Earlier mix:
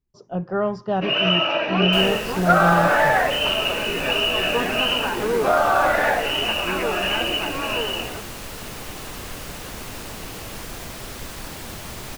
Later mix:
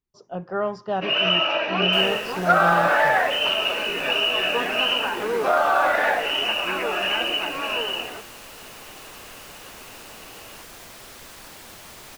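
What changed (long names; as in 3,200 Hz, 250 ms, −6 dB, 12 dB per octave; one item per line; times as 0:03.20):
second sound −6.0 dB
master: add low-shelf EQ 280 Hz −11 dB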